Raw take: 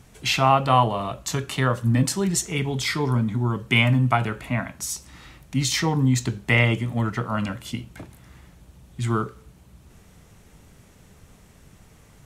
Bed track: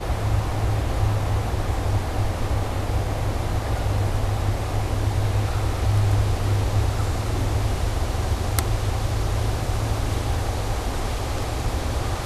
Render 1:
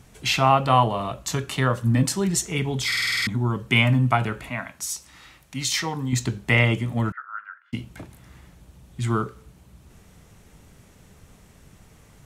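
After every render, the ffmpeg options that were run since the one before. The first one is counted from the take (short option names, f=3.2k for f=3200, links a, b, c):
-filter_complex "[0:a]asettb=1/sr,asplit=3[a][b][c];[a]atrim=end=4.494[d];[b]atrim=start=4.49:end=6.13,asetpts=PTS-STARTPTS,afade=t=in:d=0.004:c=qsin,afade=t=out:st=1.636:d=0.004:c=qsin,lowshelf=f=490:g=-10[e];[c]atrim=start=6.126[f];[d][e]acrossfade=d=0.004:c1=hsin:c2=qsin[g];[g][f]acrossfade=d=0.004:c1=qsin:c2=hsin,asettb=1/sr,asplit=3[h][i][j];[h]atrim=end=7.124[k];[i]atrim=start=7.12:end=7.73,asetpts=PTS-STARTPTS,afade=t=in:d=0.004:c=qsin,afade=t=out:st=0.606:d=0.004:c=qsin,asuperpass=centerf=1500:order=4:qfactor=3.9[l];[j]atrim=start=7.726[m];[k][l]acrossfade=d=0.004:c1=hsin:c2=qsin[n];[n][m]acrossfade=d=0.004:c1=qsin:c2=hsin,asplit=9[o][p][q][r][s][t][u][v][w];[o]atrim=end=2.922[x];[p]atrim=start=2.868:end=2.922[y];[q]atrim=start=2.868:end=2.922[z];[r]atrim=start=2.868:end=2.922[aa];[s]atrim=start=2.868:end=2.922[ab];[t]atrim=start=2.868:end=2.922[ac];[u]atrim=start=2.868:end=2.922[ad];[v]atrim=start=2.868:end=2.922[ae];[w]atrim=start=3.268[af];[x][y]acrossfade=d=0.004:c1=hsin:c2=hsin[ag];[ag][z]acrossfade=d=0.004:c1=hsin:c2=hsin[ah];[ah][aa]acrossfade=d=0.004:c1=hsin:c2=hsin[ai];[ai][ab]acrossfade=d=0.004:c1=hsin:c2=hsin[aj];[aj][ac]acrossfade=d=0.004:c1=hsin:c2=hsin[ak];[ak][ad]acrossfade=d=0.004:c1=hsin:c2=hsin[al];[al][ae]acrossfade=d=0.004:c1=hsin:c2=hsin[am];[am][af]acrossfade=d=0.004:c1=hsin:c2=hsin"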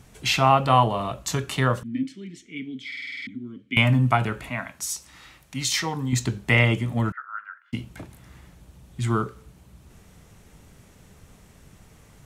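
-filter_complex "[0:a]asettb=1/sr,asplit=3[a][b][c];[a]atrim=end=1.834[d];[b]atrim=start=1.83:end=3.77,asetpts=PTS-STARTPTS,afade=t=in:d=0.004:c=qsin,afade=t=out:st=1.936:d=0.004:c=qsin,asplit=3[e][f][g];[e]bandpass=f=270:t=q:w=8,volume=0dB[h];[f]bandpass=f=2.29k:t=q:w=8,volume=-6dB[i];[g]bandpass=f=3.01k:t=q:w=8,volume=-9dB[j];[h][i][j]amix=inputs=3:normalize=0[k];[c]atrim=start=3.766[l];[d][k]acrossfade=d=0.004:c1=hsin:c2=qsin[m];[m][l]acrossfade=d=0.004:c1=qsin:c2=hsin"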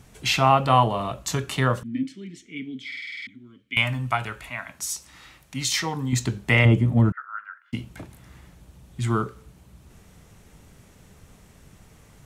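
-filter_complex "[0:a]asettb=1/sr,asplit=3[a][b][c];[a]atrim=end=2.994[d];[b]atrim=start=2.99:end=4.68,asetpts=PTS-STARTPTS,afade=t=in:d=0.004:c=qsin,afade=t=out:st=1.686:d=0.004:c=qsin,equalizer=f=230:w=0.43:g=-11.5[e];[c]atrim=start=4.676[f];[d][e]acrossfade=d=0.004:c1=hsin:c2=qsin[g];[g][f]acrossfade=d=0.004:c1=qsin:c2=hsin,asettb=1/sr,asplit=3[h][i][j];[h]atrim=end=6.654[k];[i]atrim=start=6.65:end=7.17,asetpts=PTS-STARTPTS,afade=t=in:d=0.004:c=qsin,afade=t=out:st=0.516:d=0.004:c=qsin,tiltshelf=f=770:g=7[l];[j]atrim=start=7.166[m];[k][l]acrossfade=d=0.004:c1=hsin:c2=qsin[n];[n][m]acrossfade=d=0.004:c1=qsin:c2=hsin"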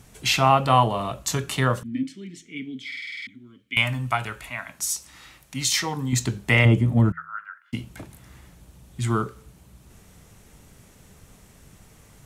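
-af "equalizer=f=12k:w=0.4:g=4.5,bandreject=f=82.3:t=h:w=4,bandreject=f=164.6:t=h:w=4"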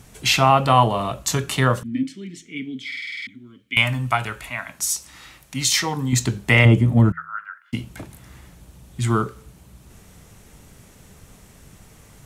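-af "volume=3.5dB,alimiter=limit=-3dB:level=0:latency=1"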